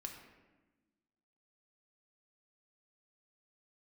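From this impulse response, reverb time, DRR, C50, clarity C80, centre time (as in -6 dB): 1.2 s, 2.5 dB, 5.5 dB, 7.5 dB, 34 ms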